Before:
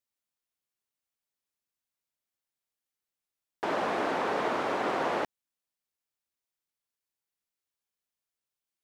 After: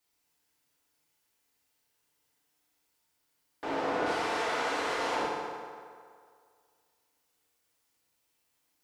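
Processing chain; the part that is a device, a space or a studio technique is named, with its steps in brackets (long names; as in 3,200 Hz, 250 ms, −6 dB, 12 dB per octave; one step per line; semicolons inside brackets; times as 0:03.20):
0:04.06–0:05.15: spectral tilt +3.5 dB per octave
compact cassette (soft clipping −26.5 dBFS, distortion −15 dB; low-pass filter 10,000 Hz; tape wow and flutter 17 cents; white noise bed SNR 37 dB)
feedback delay network reverb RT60 2.1 s, low-frequency decay 0.8×, high-frequency decay 0.65×, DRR −5.5 dB
level −5.5 dB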